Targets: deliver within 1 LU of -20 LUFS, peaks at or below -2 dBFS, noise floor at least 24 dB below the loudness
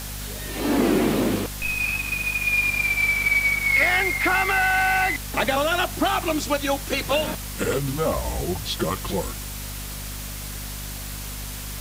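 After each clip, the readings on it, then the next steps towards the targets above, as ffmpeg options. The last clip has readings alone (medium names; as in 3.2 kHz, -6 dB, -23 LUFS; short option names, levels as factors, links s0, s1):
hum 50 Hz; highest harmonic 250 Hz; hum level -33 dBFS; noise floor -33 dBFS; noise floor target -47 dBFS; loudness -22.5 LUFS; peak level -9.5 dBFS; loudness target -20.0 LUFS
-> -af "bandreject=f=50:t=h:w=6,bandreject=f=100:t=h:w=6,bandreject=f=150:t=h:w=6,bandreject=f=200:t=h:w=6,bandreject=f=250:t=h:w=6"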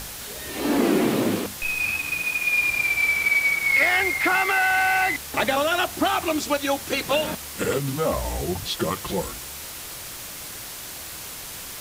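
hum not found; noise floor -37 dBFS; noise floor target -46 dBFS
-> -af "afftdn=nr=9:nf=-37"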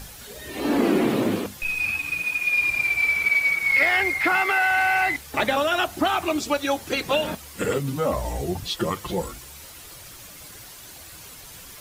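noise floor -43 dBFS; noise floor target -46 dBFS
-> -af "afftdn=nr=6:nf=-43"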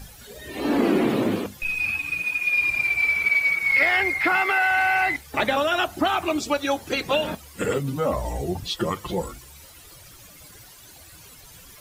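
noise floor -47 dBFS; loudness -22.0 LUFS; peak level -10.0 dBFS; loudness target -20.0 LUFS
-> -af "volume=1.26"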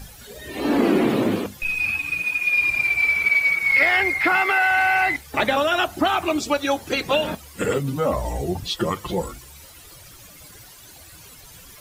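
loudness -20.0 LUFS; peak level -8.0 dBFS; noise floor -45 dBFS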